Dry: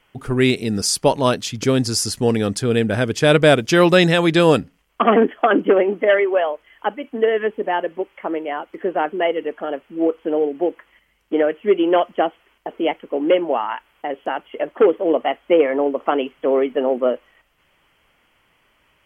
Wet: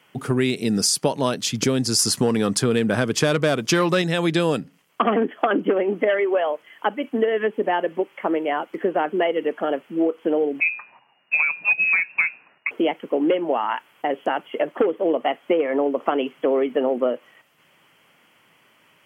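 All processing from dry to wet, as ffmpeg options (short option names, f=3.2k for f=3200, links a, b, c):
-filter_complex "[0:a]asettb=1/sr,asplit=3[a][b][c];[a]atrim=end=1.994[d];[b]atrim=start=1.99:end=4.02,asetpts=PTS-STARTPTS,afade=t=in:d=0.004:c=qsin,afade=t=out:st=2.026:d=0.004:c=qsin,equalizer=f=1.1k:t=o:w=0.59:g=7,acontrast=39[e];[c]atrim=start=4.016[f];[d][e]acrossfade=d=0.004:c1=hsin:c2=qsin[g];[g][f]acrossfade=d=0.004:c1=qsin:c2=hsin,asettb=1/sr,asplit=3[h][i][j];[h]atrim=end=10.604[k];[i]atrim=start=10.6:end=12.71,asetpts=PTS-STARTPTS,afade=t=in:d=0.004:c=qsin,afade=t=out:st=2.106:d=0.004:c=qsin,bandreject=f=60:t=h:w=6,bandreject=f=120:t=h:w=6,bandreject=f=180:t=h:w=6,bandreject=f=240:t=h:w=6,bandreject=f=300:t=h:w=6,bandreject=f=360:t=h:w=6,bandreject=f=420:t=h:w=6,bandreject=f=480:t=h:w=6,lowpass=f=2.5k:t=q:w=0.5098,lowpass=f=2.5k:t=q:w=0.6013,lowpass=f=2.5k:t=q:w=0.9,lowpass=f=2.5k:t=q:w=2.563,afreqshift=-2900[l];[j]atrim=start=12.706[m];[k][l]acrossfade=d=0.004:c1=hsin:c2=qsin[n];[n][m]acrossfade=d=0.004:c1=qsin:c2=hsin,highpass=f=130:w=0.5412,highpass=f=130:w=1.3066,bass=f=250:g=3,treble=f=4k:g=3,acompressor=threshold=-20dB:ratio=6,volume=3dB"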